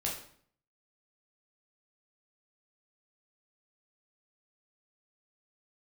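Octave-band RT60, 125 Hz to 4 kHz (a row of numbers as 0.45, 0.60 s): 0.75, 0.70, 0.60, 0.55, 0.50, 0.45 s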